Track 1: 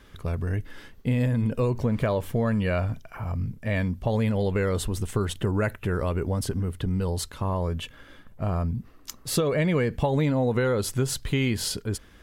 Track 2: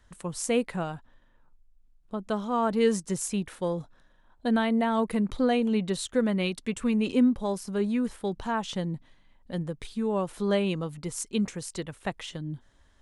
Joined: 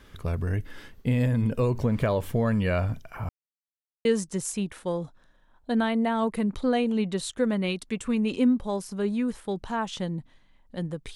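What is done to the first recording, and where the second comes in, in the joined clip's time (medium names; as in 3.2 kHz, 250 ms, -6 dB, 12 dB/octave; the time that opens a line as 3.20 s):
track 1
3.29–4.05 s: mute
4.05 s: go over to track 2 from 2.81 s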